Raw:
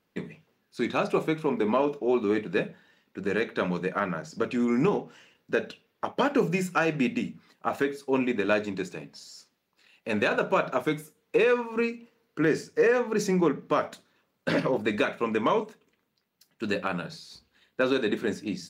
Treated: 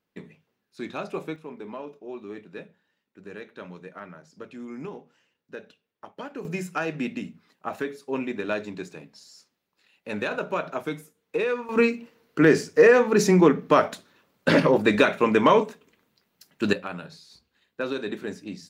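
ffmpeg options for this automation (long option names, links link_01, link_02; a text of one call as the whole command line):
ffmpeg -i in.wav -af "asetnsamples=nb_out_samples=441:pad=0,asendcmd='1.36 volume volume -13dB;6.45 volume volume -3.5dB;11.69 volume volume 7dB;16.73 volume volume -4.5dB',volume=-6.5dB" out.wav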